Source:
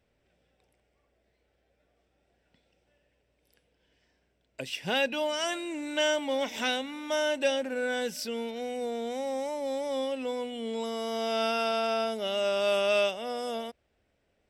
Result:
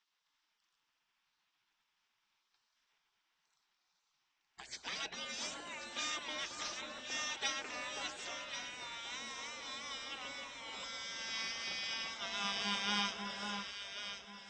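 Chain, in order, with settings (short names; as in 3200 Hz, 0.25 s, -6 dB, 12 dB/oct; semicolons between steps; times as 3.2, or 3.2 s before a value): steep low-pass 7000 Hz 48 dB/oct; spectral gate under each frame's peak -20 dB weak; echo with dull and thin repeats by turns 0.542 s, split 1400 Hz, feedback 57%, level -3.5 dB; gain +2.5 dB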